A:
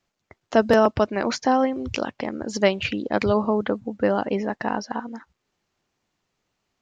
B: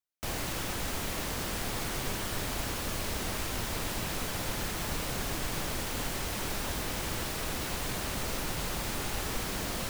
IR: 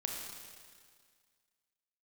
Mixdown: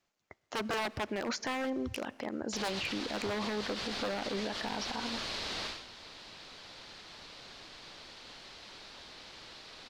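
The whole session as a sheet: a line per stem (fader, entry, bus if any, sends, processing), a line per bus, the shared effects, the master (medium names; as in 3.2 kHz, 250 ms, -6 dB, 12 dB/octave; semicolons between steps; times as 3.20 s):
-3.5 dB, 0.00 s, send -23.5 dB, wavefolder -17.5 dBFS
5.66 s -3 dB -> 5.86 s -15.5 dB, 2.30 s, no send, resonant low-pass 4.3 kHz, resonance Q 2.7; bass shelf 180 Hz -7 dB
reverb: on, RT60 1.9 s, pre-delay 27 ms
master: bass shelf 230 Hz -6.5 dB; peak limiter -26.5 dBFS, peak gain reduction 8.5 dB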